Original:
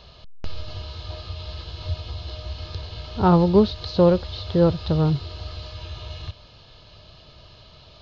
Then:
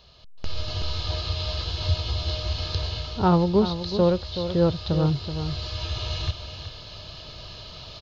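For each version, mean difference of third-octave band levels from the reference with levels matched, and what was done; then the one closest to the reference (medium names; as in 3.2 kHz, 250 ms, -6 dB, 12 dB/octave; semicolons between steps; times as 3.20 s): 6.0 dB: treble shelf 5.2 kHz +10.5 dB; delay 377 ms -10 dB; level rider gain up to 14 dB; trim -8.5 dB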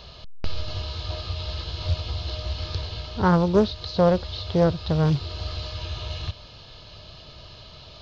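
4.0 dB: treble shelf 5.2 kHz +5.5 dB; gain riding within 3 dB 0.5 s; loudspeaker Doppler distortion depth 0.34 ms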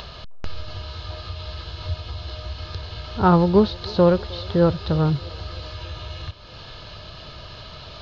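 3.0 dB: peaking EQ 1.5 kHz +6 dB 0.9 oct; upward compressor, threshold -29 dBFS; feedback echo behind a band-pass 312 ms, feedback 64%, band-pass 520 Hz, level -21 dB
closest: third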